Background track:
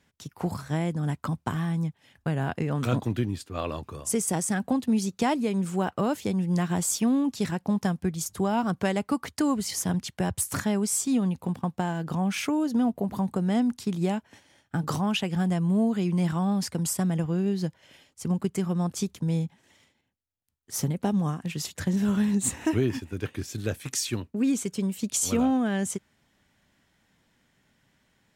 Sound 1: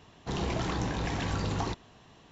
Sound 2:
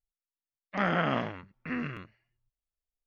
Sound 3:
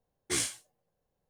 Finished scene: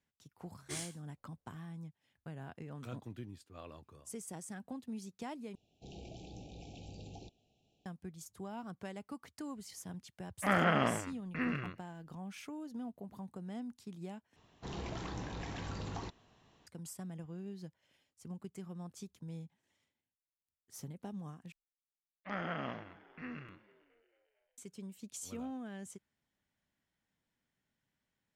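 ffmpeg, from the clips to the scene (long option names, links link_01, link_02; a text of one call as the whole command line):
ffmpeg -i bed.wav -i cue0.wav -i cue1.wav -i cue2.wav -filter_complex "[1:a]asplit=2[link_01][link_02];[2:a]asplit=2[link_03][link_04];[0:a]volume=-19dB[link_05];[link_01]asuperstop=centerf=1400:order=20:qfactor=0.91[link_06];[link_04]asplit=6[link_07][link_08][link_09][link_10][link_11][link_12];[link_08]adelay=225,afreqshift=73,volume=-20.5dB[link_13];[link_09]adelay=450,afreqshift=146,volume=-24.9dB[link_14];[link_10]adelay=675,afreqshift=219,volume=-29.4dB[link_15];[link_11]adelay=900,afreqshift=292,volume=-33.8dB[link_16];[link_12]adelay=1125,afreqshift=365,volume=-38.2dB[link_17];[link_07][link_13][link_14][link_15][link_16][link_17]amix=inputs=6:normalize=0[link_18];[link_05]asplit=4[link_19][link_20][link_21][link_22];[link_19]atrim=end=5.554[link_23];[link_06]atrim=end=2.31,asetpts=PTS-STARTPTS,volume=-18dB[link_24];[link_20]atrim=start=7.856:end=14.364[link_25];[link_02]atrim=end=2.31,asetpts=PTS-STARTPTS,volume=-10.5dB[link_26];[link_21]atrim=start=16.666:end=21.524[link_27];[link_18]atrim=end=3.06,asetpts=PTS-STARTPTS,volume=-11.5dB[link_28];[link_22]atrim=start=24.576[link_29];[3:a]atrim=end=1.29,asetpts=PTS-STARTPTS,volume=-12dB,afade=type=in:duration=0.004:curve=hsin,afade=type=out:start_time=1.286:duration=0.004:curve=hsin,adelay=390[link_30];[link_03]atrim=end=3.06,asetpts=PTS-STARTPTS,volume=-1.5dB,afade=type=in:duration=0.004:curve=hsin,afade=type=out:start_time=3.056:duration=0.004:curve=hsin,adelay=9690[link_31];[link_23][link_24]acrossfade=duration=0.004:curve1=hsin:curve2=hsin[link_32];[link_32][link_25]acrossfade=duration=0.004:curve1=hsin:curve2=hsin[link_33];[link_33][link_26]acrossfade=duration=0.004:curve1=hsin:curve2=hsin[link_34];[link_34][link_27]acrossfade=duration=0.004:curve1=hsin:curve2=hsin[link_35];[link_35][link_28]acrossfade=duration=0.004:curve1=hsin:curve2=hsin[link_36];[link_36][link_29]acrossfade=duration=0.004:curve1=hsin:curve2=hsin[link_37];[link_37][link_30][link_31]amix=inputs=3:normalize=0" out.wav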